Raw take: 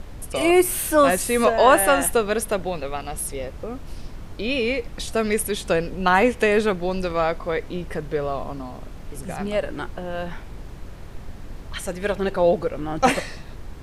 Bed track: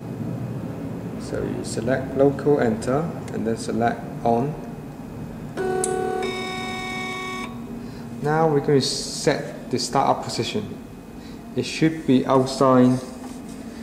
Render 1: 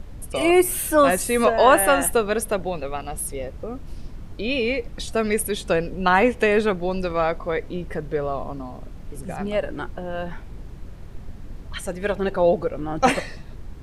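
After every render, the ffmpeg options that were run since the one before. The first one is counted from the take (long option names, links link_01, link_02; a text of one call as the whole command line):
ffmpeg -i in.wav -af "afftdn=noise_reduction=6:noise_floor=-38" out.wav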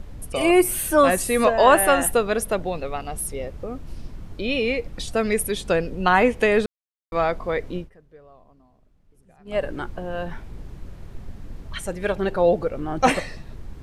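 ffmpeg -i in.wav -filter_complex "[0:a]asplit=5[link_01][link_02][link_03][link_04][link_05];[link_01]atrim=end=6.66,asetpts=PTS-STARTPTS,afade=type=out:start_time=6.656:duration=0.004:curve=hsin[link_06];[link_02]atrim=start=6.66:end=7.12,asetpts=PTS-STARTPTS,volume=0[link_07];[link_03]atrim=start=7.12:end=7.9,asetpts=PTS-STARTPTS,afade=type=in:duration=0.004:curve=hsin,afade=type=out:start_time=0.65:duration=0.13:silence=0.0668344[link_08];[link_04]atrim=start=7.9:end=9.45,asetpts=PTS-STARTPTS,volume=-23.5dB[link_09];[link_05]atrim=start=9.45,asetpts=PTS-STARTPTS,afade=type=in:duration=0.13:silence=0.0668344[link_10];[link_06][link_07][link_08][link_09][link_10]concat=n=5:v=0:a=1" out.wav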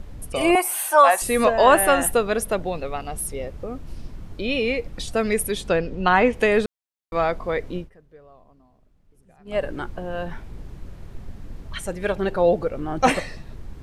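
ffmpeg -i in.wav -filter_complex "[0:a]asettb=1/sr,asplit=3[link_01][link_02][link_03];[link_01]atrim=end=0.554[link_04];[link_02]atrim=start=0.55:end=1.22,asetpts=PTS-STARTPTS,afade=type=in:duration=0.004:curve=qsin,afade=type=out:start_time=0.666:duration=0.004:curve=qsin,highpass=frequency=830:width_type=q:width=3.9[link_05];[link_03]atrim=start=1.216[link_06];[link_04][link_05]acrossfade=duration=0.004:curve1=hsin:curve2=qsin[link_07];[link_07][link_06]acrossfade=duration=0.004:curve1=qsin:curve2=hsin,asettb=1/sr,asplit=3[link_08][link_09][link_10];[link_08]atrim=end=5.684[link_11];[link_09]atrim=start=5.68:end=6.33,asetpts=PTS-STARTPTS,afade=type=in:duration=0.004:curve=qsin,afade=type=out:start_time=0.646:duration=0.004:curve=qsin,lowpass=5500[link_12];[link_10]atrim=start=6.326[link_13];[link_11][link_12]acrossfade=duration=0.004:curve1=hsin:curve2=qsin[link_14];[link_14][link_13]acrossfade=duration=0.004:curve1=qsin:curve2=hsin" out.wav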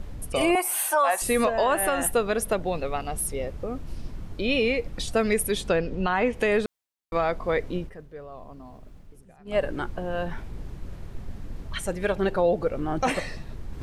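ffmpeg -i in.wav -af "alimiter=limit=-13.5dB:level=0:latency=1:release=213,areverse,acompressor=mode=upward:threshold=-31dB:ratio=2.5,areverse" out.wav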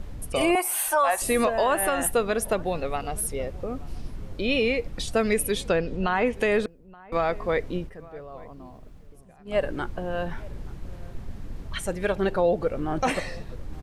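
ffmpeg -i in.wav -filter_complex "[0:a]asplit=2[link_01][link_02];[link_02]adelay=874.6,volume=-22dB,highshelf=frequency=4000:gain=-19.7[link_03];[link_01][link_03]amix=inputs=2:normalize=0" out.wav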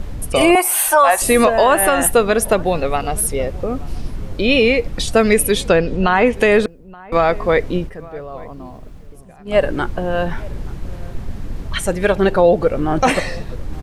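ffmpeg -i in.wav -af "volume=10dB" out.wav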